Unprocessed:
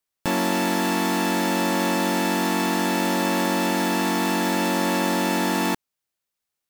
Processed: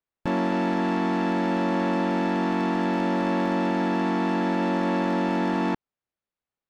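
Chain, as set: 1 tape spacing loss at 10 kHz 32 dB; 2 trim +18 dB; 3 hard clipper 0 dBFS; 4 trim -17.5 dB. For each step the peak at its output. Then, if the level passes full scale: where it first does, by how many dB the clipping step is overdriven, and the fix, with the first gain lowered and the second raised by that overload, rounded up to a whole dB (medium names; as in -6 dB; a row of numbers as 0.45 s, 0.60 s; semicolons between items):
-13.0 dBFS, +5.0 dBFS, 0.0 dBFS, -17.5 dBFS; step 2, 5.0 dB; step 2 +13 dB, step 4 -12.5 dB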